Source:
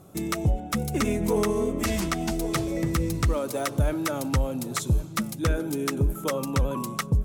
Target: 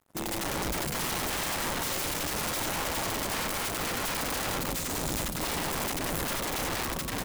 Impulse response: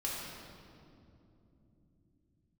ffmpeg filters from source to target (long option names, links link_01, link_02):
-filter_complex "[0:a]asplit=2[link_01][link_02];[link_02]aecho=0:1:90|193.5|312.5|449.4|606.8:0.631|0.398|0.251|0.158|0.1[link_03];[link_01][link_03]amix=inputs=2:normalize=0,aeval=exprs='(mod(15*val(0)+1,2)-1)/15':channel_layout=same,asplit=2[link_04][link_05];[1:a]atrim=start_sample=2205[link_06];[link_05][link_06]afir=irnorm=-1:irlink=0,volume=-13.5dB[link_07];[link_04][link_07]amix=inputs=2:normalize=0,aeval=exprs='sgn(val(0))*max(abs(val(0))-0.00596,0)':channel_layout=same,volume=-3.5dB"